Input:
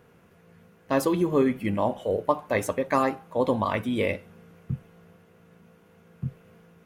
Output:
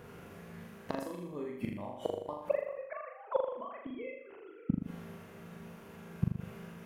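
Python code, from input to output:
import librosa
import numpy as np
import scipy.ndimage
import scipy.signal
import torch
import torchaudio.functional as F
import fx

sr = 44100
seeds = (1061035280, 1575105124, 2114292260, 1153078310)

y = fx.sine_speech(x, sr, at=(2.49, 4.72))
y = fx.gate_flip(y, sr, shuts_db=-22.0, range_db=-26)
y = fx.room_flutter(y, sr, wall_m=6.9, rt60_s=0.72)
y = y * librosa.db_to_amplitude(5.0)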